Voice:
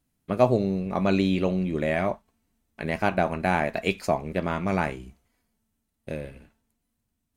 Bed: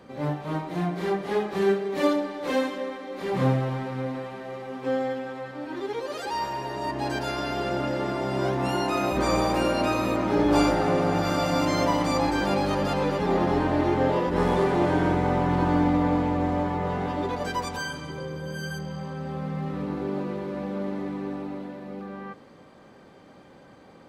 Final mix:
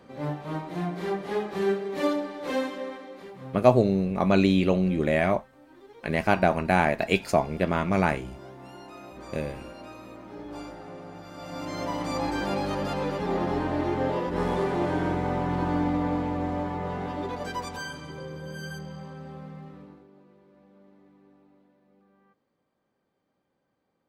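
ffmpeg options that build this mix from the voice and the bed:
-filter_complex "[0:a]adelay=3250,volume=2dB[a];[1:a]volume=12dB,afade=t=out:st=2.95:d=0.39:silence=0.158489,afade=t=in:st=11.32:d=1.01:silence=0.177828,afade=t=out:st=18.72:d=1.35:silence=0.0794328[b];[a][b]amix=inputs=2:normalize=0"

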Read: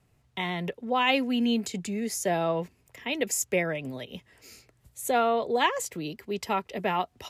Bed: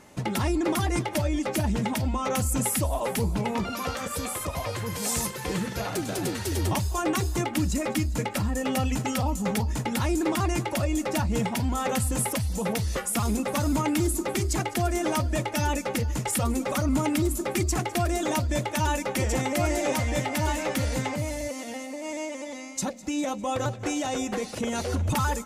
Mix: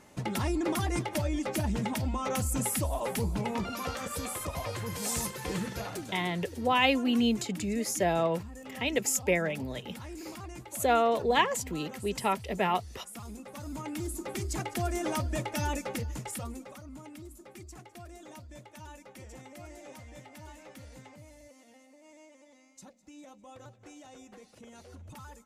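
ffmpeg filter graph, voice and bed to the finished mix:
-filter_complex "[0:a]adelay=5750,volume=-0.5dB[a];[1:a]volume=7.5dB,afade=t=out:st=5.67:d=0.6:silence=0.223872,afade=t=in:st=13.54:d=1.33:silence=0.251189,afade=t=out:st=15.74:d=1.05:silence=0.149624[b];[a][b]amix=inputs=2:normalize=0"

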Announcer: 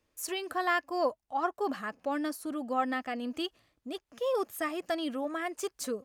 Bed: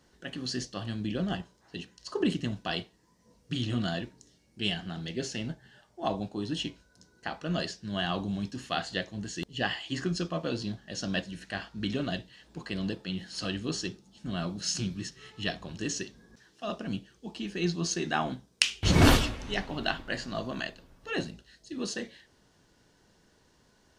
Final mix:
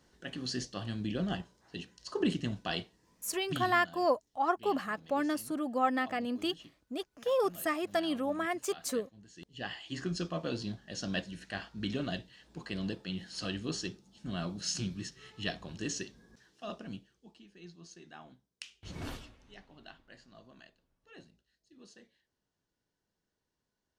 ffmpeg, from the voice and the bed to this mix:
-filter_complex "[0:a]adelay=3050,volume=1dB[a];[1:a]volume=13.5dB,afade=t=out:st=3.49:d=0.27:silence=0.141254,afade=t=in:st=9.28:d=0.95:silence=0.158489,afade=t=out:st=16.3:d=1.15:silence=0.11885[b];[a][b]amix=inputs=2:normalize=0"

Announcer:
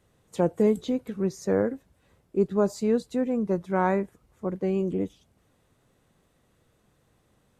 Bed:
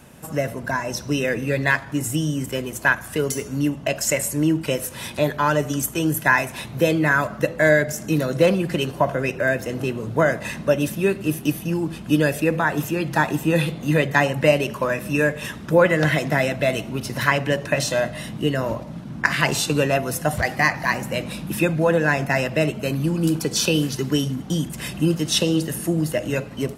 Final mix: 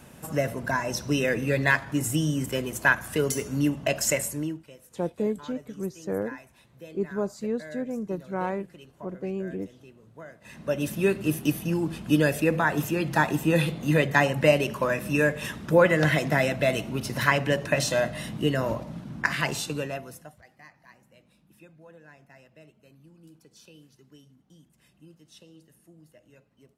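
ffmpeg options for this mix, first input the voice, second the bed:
-filter_complex "[0:a]adelay=4600,volume=-5.5dB[a];[1:a]volume=20.5dB,afade=t=out:st=4.05:d=0.59:silence=0.0668344,afade=t=in:st=10.41:d=0.63:silence=0.0707946,afade=t=out:st=18.83:d=1.52:silence=0.0334965[b];[a][b]amix=inputs=2:normalize=0"

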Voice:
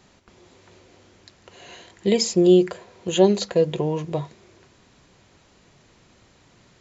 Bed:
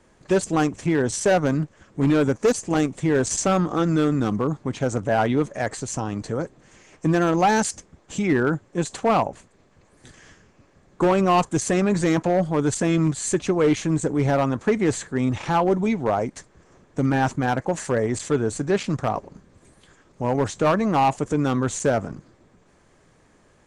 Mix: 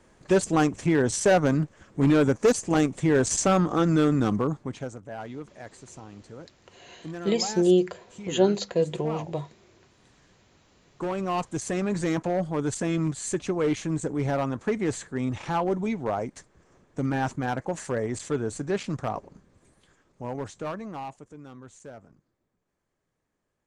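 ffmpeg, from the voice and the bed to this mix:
-filter_complex "[0:a]adelay=5200,volume=-5dB[a];[1:a]volume=10dB,afade=t=out:st=4.33:d=0.64:silence=0.158489,afade=t=in:st=10.53:d=1.5:silence=0.281838,afade=t=out:st=19.31:d=1.99:silence=0.141254[b];[a][b]amix=inputs=2:normalize=0"

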